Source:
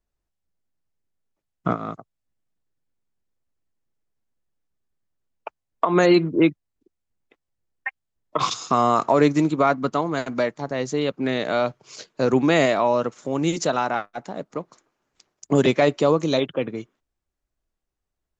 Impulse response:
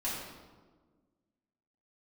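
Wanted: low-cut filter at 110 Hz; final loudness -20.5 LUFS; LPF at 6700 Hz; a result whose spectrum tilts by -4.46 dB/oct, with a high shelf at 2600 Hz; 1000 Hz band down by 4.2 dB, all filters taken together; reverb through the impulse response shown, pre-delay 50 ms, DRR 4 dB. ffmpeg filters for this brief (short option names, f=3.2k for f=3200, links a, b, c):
-filter_complex "[0:a]highpass=110,lowpass=6.7k,equalizer=f=1k:t=o:g=-6.5,highshelf=f=2.6k:g=4.5,asplit=2[a][b];[1:a]atrim=start_sample=2205,adelay=50[c];[b][c]afir=irnorm=-1:irlink=0,volume=-9dB[d];[a][d]amix=inputs=2:normalize=0,volume=1dB"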